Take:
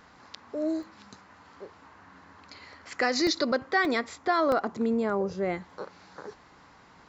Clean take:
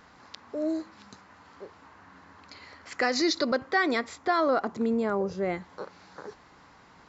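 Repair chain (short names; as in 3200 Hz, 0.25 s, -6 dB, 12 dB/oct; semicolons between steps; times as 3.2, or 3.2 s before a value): interpolate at 0.83/3.27/3.85/4.52/5.71, 1.4 ms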